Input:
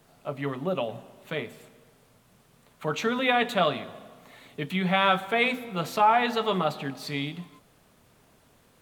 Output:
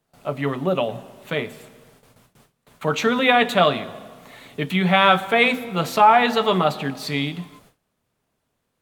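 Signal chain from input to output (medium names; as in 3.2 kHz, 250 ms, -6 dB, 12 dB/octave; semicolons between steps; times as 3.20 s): gate with hold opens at -48 dBFS; trim +7 dB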